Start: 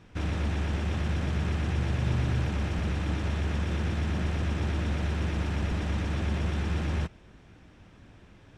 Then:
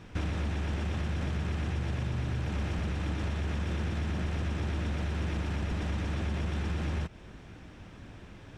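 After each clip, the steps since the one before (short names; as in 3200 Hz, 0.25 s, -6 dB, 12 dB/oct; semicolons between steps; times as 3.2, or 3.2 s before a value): in parallel at -2 dB: limiter -25 dBFS, peak gain reduction 8 dB; on the sum: compressor, threshold -29 dBFS, peak gain reduction 9.5 dB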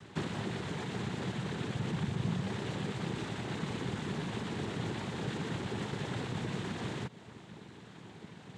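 noise vocoder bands 6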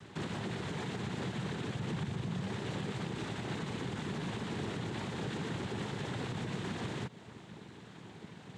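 limiter -28.5 dBFS, peak gain reduction 6.5 dB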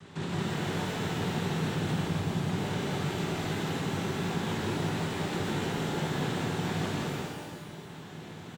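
on a send: loudspeakers at several distances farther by 57 m -1 dB, 74 m -10 dB; on the sum: shimmer reverb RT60 1.2 s, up +12 st, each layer -8 dB, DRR -0.5 dB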